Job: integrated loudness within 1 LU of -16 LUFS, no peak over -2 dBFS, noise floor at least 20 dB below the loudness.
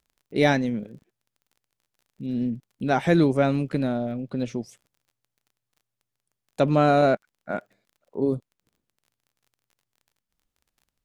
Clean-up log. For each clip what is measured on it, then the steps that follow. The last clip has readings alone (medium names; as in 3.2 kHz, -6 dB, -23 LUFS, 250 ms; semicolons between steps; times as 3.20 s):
tick rate 30 per s; loudness -24.5 LUFS; peak level -6.5 dBFS; loudness target -16.0 LUFS
-> de-click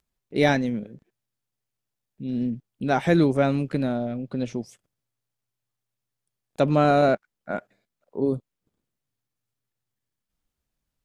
tick rate 0.091 per s; loudness -24.5 LUFS; peak level -6.5 dBFS; loudness target -16.0 LUFS
-> trim +8.5 dB; peak limiter -2 dBFS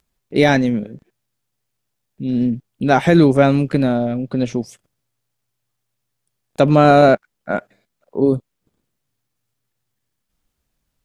loudness -16.5 LUFS; peak level -2.0 dBFS; noise floor -76 dBFS